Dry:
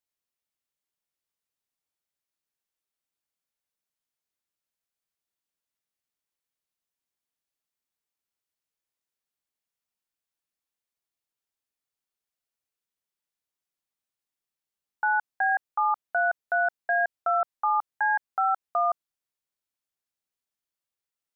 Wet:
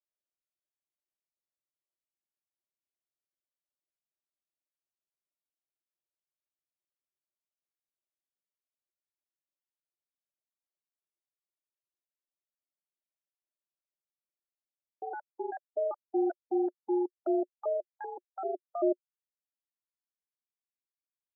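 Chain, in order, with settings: pitch shift switched off and on -11.5 st, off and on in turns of 194 ms; two resonant band-passes 460 Hz, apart 0.71 oct; reverb removal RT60 1.9 s

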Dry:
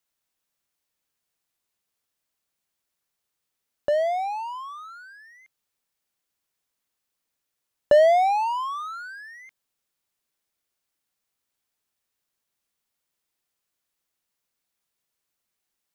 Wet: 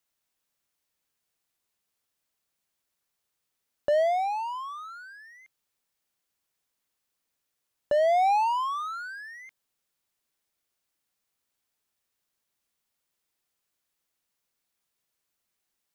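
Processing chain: peak limiter -17 dBFS, peak gain reduction 9 dB

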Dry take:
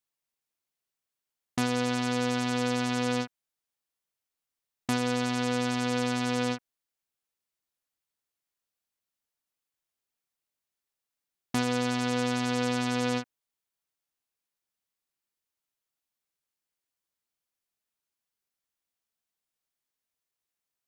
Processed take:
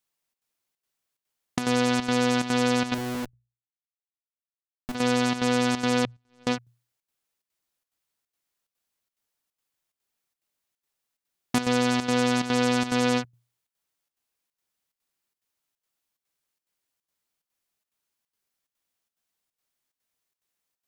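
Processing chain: 2.94–4.95 s: Schmitt trigger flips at -36 dBFS; 6.05–6.47 s: gate -23 dBFS, range -47 dB; hum notches 60/120 Hz; square tremolo 2.4 Hz, depth 65%, duty 80%; trim +5.5 dB

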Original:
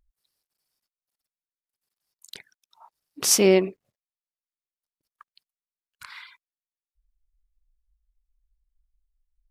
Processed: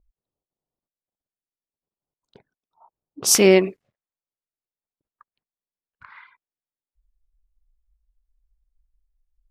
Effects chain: level-controlled noise filter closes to 790 Hz, open at -22 dBFS; peaking EQ 1.9 kHz -14 dB 0.92 oct, from 3.35 s +3.5 dB; trim +3.5 dB

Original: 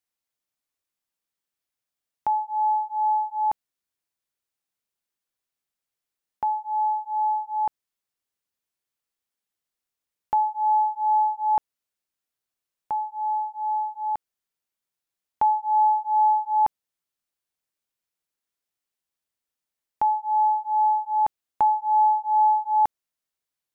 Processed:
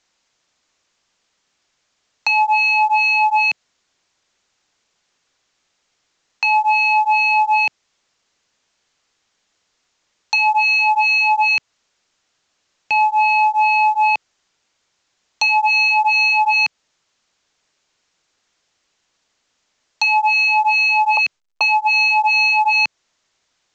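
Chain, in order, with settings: dynamic bell 160 Hz, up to -3 dB, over -43 dBFS, Q 1.1; compression 3:1, threshold -23 dBFS, peak gain reduction 5.5 dB; 21.17–22.01 s: expander -24 dBFS; sine folder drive 14 dB, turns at -14 dBFS; bass shelf 270 Hz -5.5 dB; trim +3 dB; A-law 128 kbps 16 kHz

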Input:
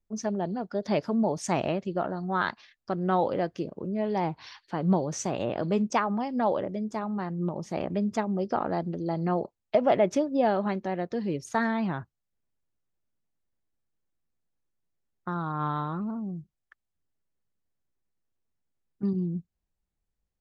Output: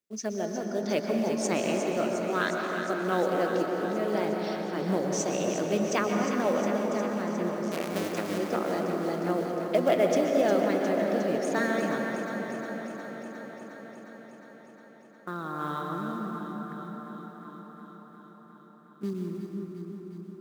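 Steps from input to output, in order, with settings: 7.63–8.38 s: cycle switcher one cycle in 2, muted; high-pass 300 Hz 12 dB/octave; peaking EQ 870 Hz -11 dB 0.78 oct; in parallel at -3 dB: short-mantissa float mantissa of 2-bit; on the sum: echo whose repeats swap between lows and highs 179 ms, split 840 Hz, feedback 86%, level -7.5 dB; on a send at -2 dB: reverberation RT60 4.7 s, pre-delay 113 ms; on the sum: trim -2.5 dB

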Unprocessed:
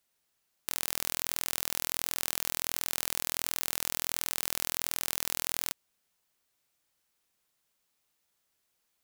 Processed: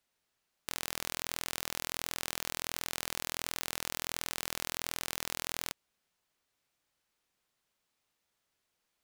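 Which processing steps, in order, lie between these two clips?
treble shelf 7.3 kHz -9.5 dB

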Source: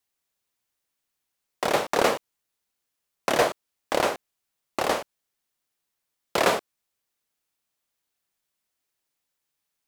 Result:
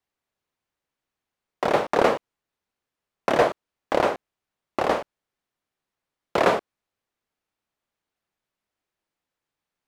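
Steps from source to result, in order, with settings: low-pass 1.6 kHz 6 dB/octave; trim +3.5 dB

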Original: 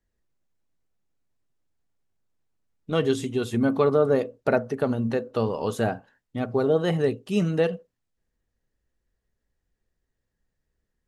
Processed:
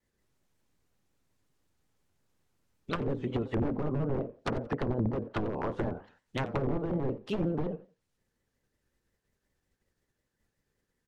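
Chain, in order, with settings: spectral peaks clipped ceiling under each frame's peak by 14 dB; in parallel at +1.5 dB: gain riding within 4 dB 0.5 s; on the sum: integer overflow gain 10 dB; band-stop 670 Hz, Q 12; low-pass that closes with the level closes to 480 Hz, closed at -15 dBFS; on a send: feedback delay 89 ms, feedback 26%, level -19 dB; on the sum: vibrato with a chosen wave square 5.5 Hz, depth 100 cents; trim -9 dB

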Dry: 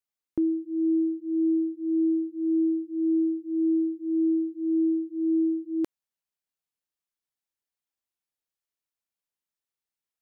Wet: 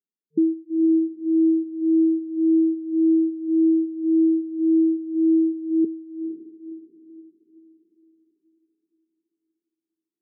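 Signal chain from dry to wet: reverb removal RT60 0.72 s; echo that smears into a reverb 501 ms, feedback 44%, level -11 dB; FFT band-pass 160–450 Hz; trim +6 dB

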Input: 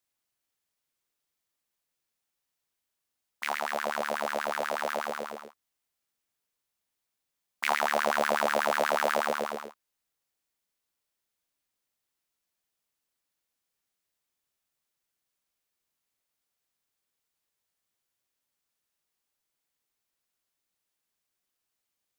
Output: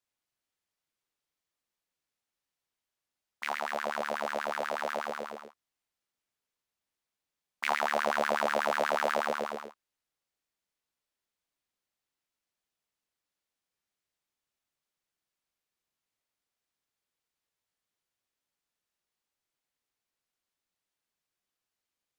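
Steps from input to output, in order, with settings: treble shelf 8.8 kHz -9.5 dB; trim -2 dB

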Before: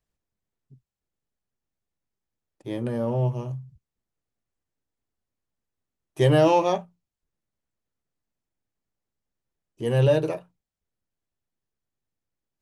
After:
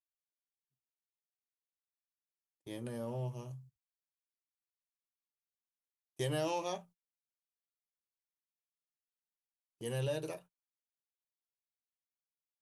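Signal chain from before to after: gate -42 dBFS, range -27 dB; pre-emphasis filter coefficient 0.8; compression 2:1, threshold -34 dBFS, peak gain reduction 4 dB

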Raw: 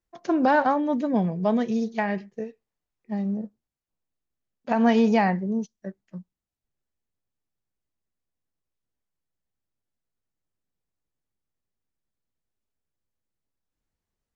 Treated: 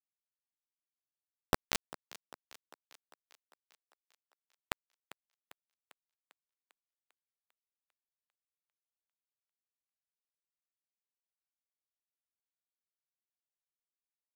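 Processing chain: high-order bell 1.3 kHz -9 dB 2.8 oct; compression 4:1, threshold -33 dBFS, peak gain reduction 13.5 dB; painted sound rise, 1.51–1.90 s, 240–4800 Hz -33 dBFS; bit crusher 4-bit; on a send: thinning echo 398 ms, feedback 60%, high-pass 250 Hz, level -16 dB; on the sum: trim +5.5 dB

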